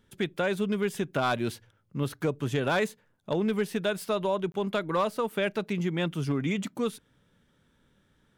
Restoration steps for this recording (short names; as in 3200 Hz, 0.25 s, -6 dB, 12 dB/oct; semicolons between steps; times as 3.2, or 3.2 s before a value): clip repair -19 dBFS; interpolate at 4.52, 22 ms